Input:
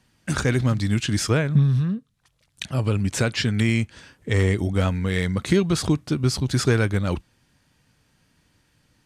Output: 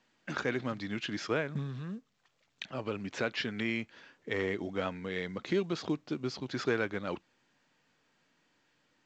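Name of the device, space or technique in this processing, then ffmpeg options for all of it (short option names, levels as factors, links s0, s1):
telephone: -filter_complex "[0:a]asettb=1/sr,asplit=3[s0][s1][s2];[s0]atrim=end=4.974[s3];[s1]atrim=start=4.97:end=6.4,asetpts=PTS-STARTPTS,afade=t=in:d=0.004:c=qsin,afade=t=out:st=1.426:d=0.004:c=qsin,equalizer=f=1400:t=o:w=1.7:g=-3.5[s4];[s2]atrim=start=6.396[s5];[s3][s4]acrossfade=d=0.004:c1=hsin:c2=qsin[s6];[s6][s5]acrossfade=d=0.004:c1=qsin:c2=hsin,highpass=290,lowpass=3500,volume=0.447" -ar 16000 -c:a pcm_mulaw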